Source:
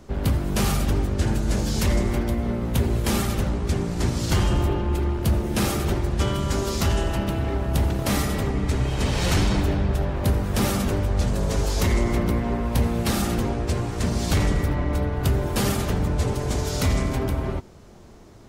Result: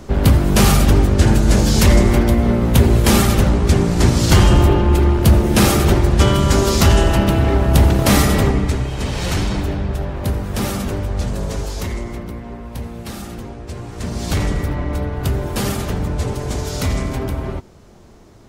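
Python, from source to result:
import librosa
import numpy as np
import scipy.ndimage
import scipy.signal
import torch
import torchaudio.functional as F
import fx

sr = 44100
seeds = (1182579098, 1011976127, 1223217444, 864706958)

y = fx.gain(x, sr, db=fx.line((8.46, 10.0), (8.88, 1.0), (11.41, 1.0), (12.27, -7.0), (13.62, -7.0), (14.33, 2.0)))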